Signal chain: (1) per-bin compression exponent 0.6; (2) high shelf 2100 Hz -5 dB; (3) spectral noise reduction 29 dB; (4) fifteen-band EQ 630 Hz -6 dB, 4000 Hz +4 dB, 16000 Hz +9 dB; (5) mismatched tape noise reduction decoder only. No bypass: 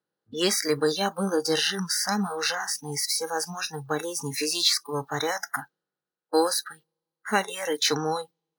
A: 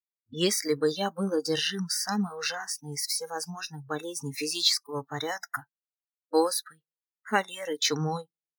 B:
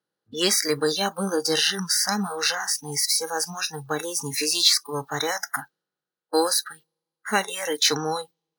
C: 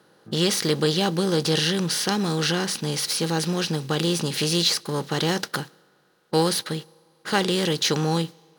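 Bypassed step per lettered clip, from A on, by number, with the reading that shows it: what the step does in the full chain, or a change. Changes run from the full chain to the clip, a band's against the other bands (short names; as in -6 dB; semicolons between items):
1, 125 Hz band +3.0 dB; 2, 8 kHz band +4.0 dB; 3, 125 Hz band +10.0 dB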